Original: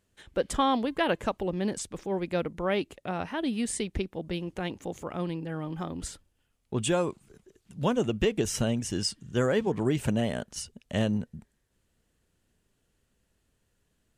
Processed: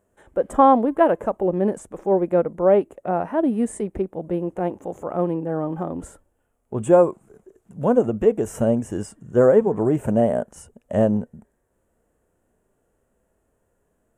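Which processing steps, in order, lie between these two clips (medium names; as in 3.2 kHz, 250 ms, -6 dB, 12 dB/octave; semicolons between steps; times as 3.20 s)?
dynamic bell 4.1 kHz, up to -4 dB, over -45 dBFS, Q 0.74; harmonic-percussive split percussive -8 dB; FFT filter 140 Hz 0 dB, 630 Hz +12 dB, 1.5 kHz +3 dB, 4.5 kHz -17 dB, 7.4 kHz 0 dB; trim +4 dB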